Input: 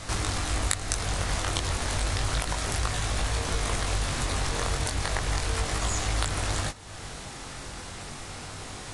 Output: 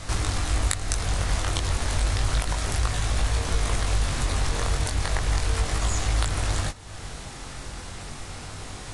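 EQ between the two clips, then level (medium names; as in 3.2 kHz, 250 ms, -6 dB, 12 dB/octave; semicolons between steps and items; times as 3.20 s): bass shelf 86 Hz +7.5 dB; 0.0 dB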